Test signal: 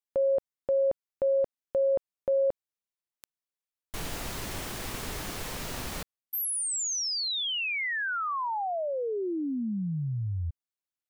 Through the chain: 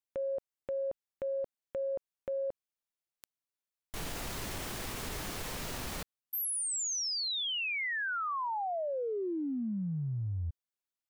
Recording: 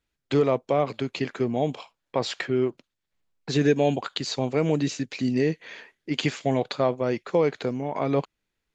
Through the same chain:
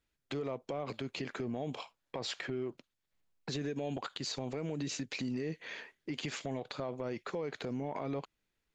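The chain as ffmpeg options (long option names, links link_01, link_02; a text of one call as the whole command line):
ffmpeg -i in.wav -af "acompressor=threshold=-29dB:ratio=10:attack=0.76:release=69:knee=1:detection=rms,volume=-2.5dB" out.wav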